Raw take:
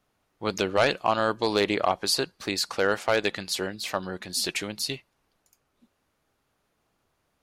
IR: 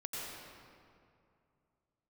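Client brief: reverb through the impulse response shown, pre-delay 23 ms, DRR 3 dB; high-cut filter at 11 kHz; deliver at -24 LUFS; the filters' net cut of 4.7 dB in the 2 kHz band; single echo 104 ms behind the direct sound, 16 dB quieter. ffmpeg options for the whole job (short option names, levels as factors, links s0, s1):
-filter_complex "[0:a]lowpass=11000,equalizer=f=2000:t=o:g=-6.5,aecho=1:1:104:0.158,asplit=2[s0][s1];[1:a]atrim=start_sample=2205,adelay=23[s2];[s1][s2]afir=irnorm=-1:irlink=0,volume=0.596[s3];[s0][s3]amix=inputs=2:normalize=0,volume=1.26"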